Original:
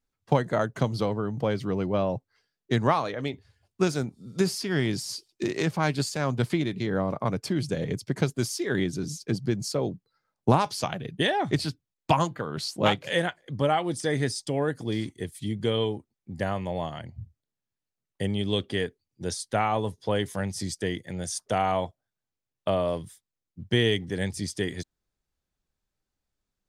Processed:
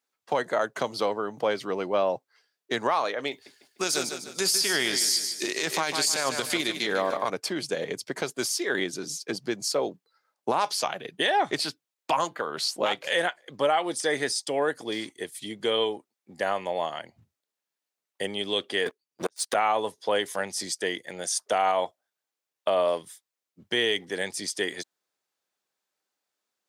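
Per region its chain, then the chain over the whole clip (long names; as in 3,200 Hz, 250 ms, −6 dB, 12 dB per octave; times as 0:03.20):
0:03.31–0:07.30: high-shelf EQ 2,800 Hz +12 dB + repeating echo 150 ms, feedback 41%, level −10 dB
0:18.86–0:19.55: gate with flip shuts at −20 dBFS, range −34 dB + leveller curve on the samples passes 3
whole clip: high-pass filter 480 Hz 12 dB per octave; brickwall limiter −19 dBFS; level +5 dB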